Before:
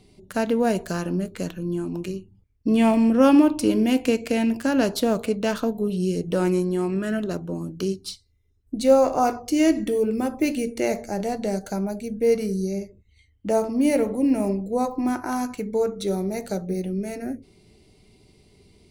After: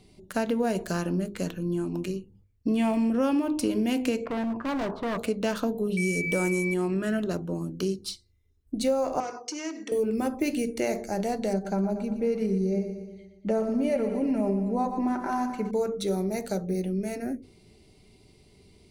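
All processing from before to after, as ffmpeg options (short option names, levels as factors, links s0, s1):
-filter_complex "[0:a]asettb=1/sr,asplit=3[s0][s1][s2];[s0]atrim=end=4.254[s3];[s1]atrim=start=4.25:end=5.18,asetpts=PTS-STARTPTS,afade=t=in:d=0.004:c=qsin,afade=t=out:st=0.926:d=0.004:c=qsin,lowpass=f=1100:t=q:w=4.8,volume=14.1,asoftclip=hard,volume=0.0708,acompressor=threshold=0.0447:ratio=3:attack=3.2:release=140:knee=1:detection=peak[s4];[s2]atrim=start=5.176[s5];[s3][s4]acrossfade=d=0.004:c1=hsin:c2=qsin[s6];[s6][s5]acrossfade=d=0.004:c1=qsin:c2=hsin,asettb=1/sr,asplit=3[s7][s8][s9];[s7]atrim=end=5.974[s10];[s8]atrim=start=5.97:end=6.74,asetpts=PTS-STARTPTS,afade=t=in:d=0.004:c=qsin,afade=t=out:st=0.766:d=0.004:c=qsin,highshelf=f=5400:t=q:w=1.5:g=8.5,aeval=exprs='val(0)+0.0501*sin(2*PI*2300*n/s)':c=same,aeval=exprs='sgn(val(0))*max(abs(val(0))-0.00178,0)':c=same[s11];[s9]atrim=start=6.736[s12];[s10][s11]acrossfade=d=0.004:c1=hsin:c2=qsin[s13];[s13][s12]acrossfade=d=0.004:c1=qsin:c2=hsin,asettb=1/sr,asplit=3[s14][s15][s16];[s14]atrim=end=9.204[s17];[s15]atrim=start=9.2:end=9.92,asetpts=PTS-STARTPTS,afade=t=in:d=0.004:c=qsin,afade=t=out:st=0.716:d=0.004:c=qsin,acompressor=threshold=0.0447:ratio=2.5:attack=3.2:release=140:knee=1:detection=peak,asoftclip=type=hard:threshold=0.0708,highpass=f=320:w=0.5412,highpass=f=320:w=1.3066,equalizer=f=360:t=q:w=4:g=-5,equalizer=f=660:t=q:w=4:g=-6,equalizer=f=3600:t=q:w=4:g=-5,equalizer=f=5800:t=q:w=4:g=7,lowpass=f=7400:w=0.5412,lowpass=f=7400:w=1.3066[s18];[s16]atrim=start=9.916[s19];[s17][s18]acrossfade=d=0.004:c1=hsin:c2=qsin[s20];[s20][s19]acrossfade=d=0.004:c1=qsin:c2=hsin,asettb=1/sr,asplit=3[s21][s22][s23];[s21]atrim=end=11.534[s24];[s22]atrim=start=11.53:end=15.71,asetpts=PTS-STARTPTS,afade=t=in:d=0.004:c=qsin,afade=t=out:st=4.176:d=0.004:c=qsin,lowpass=f=2000:p=1,aecho=1:1:5.1:0.53,atrim=end_sample=184338,aecho=1:1:118|236|354|472|590|708:0.282|0.161|0.0916|0.0522|0.0298|0.017,atrim=end_sample=184338[s25];[s23]atrim=start=15.706[s26];[s24][s25]acrossfade=d=0.004:c1=hsin:c2=qsin[s27];[s27][s26]acrossfade=d=0.004:c1=qsin:c2=hsin,bandreject=f=50.73:t=h:w=4,bandreject=f=101.46:t=h:w=4,bandreject=f=152.19:t=h:w=4,bandreject=f=202.92:t=h:w=4,bandreject=f=253.65:t=h:w=4,bandreject=f=304.38:t=h:w=4,bandreject=f=355.11:t=h:w=4,bandreject=f=405.84:t=h:w=4,bandreject=f=456.57:t=h:w=4,bandreject=f=507.3:t=h:w=4,acompressor=threshold=0.0891:ratio=6,volume=0.891"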